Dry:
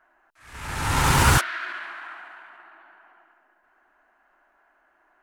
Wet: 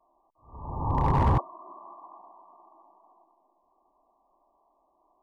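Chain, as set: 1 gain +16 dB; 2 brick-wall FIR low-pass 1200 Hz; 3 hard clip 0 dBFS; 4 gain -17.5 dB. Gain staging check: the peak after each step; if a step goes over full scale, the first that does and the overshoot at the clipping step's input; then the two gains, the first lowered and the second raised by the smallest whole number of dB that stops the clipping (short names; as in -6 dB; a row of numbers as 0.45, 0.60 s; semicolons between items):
+11.5, +9.0, 0.0, -17.5 dBFS; step 1, 9.0 dB; step 1 +7 dB, step 4 -8.5 dB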